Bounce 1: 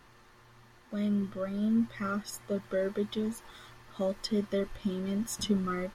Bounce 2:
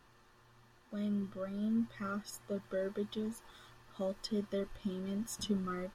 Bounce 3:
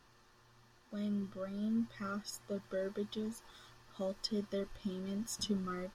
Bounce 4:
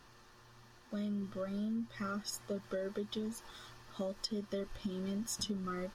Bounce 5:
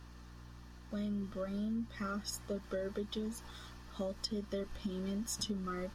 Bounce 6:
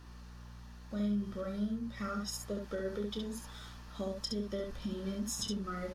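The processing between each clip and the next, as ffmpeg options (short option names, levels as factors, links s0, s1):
-af "bandreject=f=2100:w=8.7,volume=0.501"
-af "equalizer=f=5300:t=o:w=0.78:g=6,volume=0.841"
-af "acompressor=threshold=0.01:ratio=6,volume=1.78"
-af "aeval=exprs='val(0)+0.00251*(sin(2*PI*60*n/s)+sin(2*PI*2*60*n/s)/2+sin(2*PI*3*60*n/s)/3+sin(2*PI*4*60*n/s)/4+sin(2*PI*5*60*n/s)/5)':c=same"
-af "aecho=1:1:29|68:0.316|0.596"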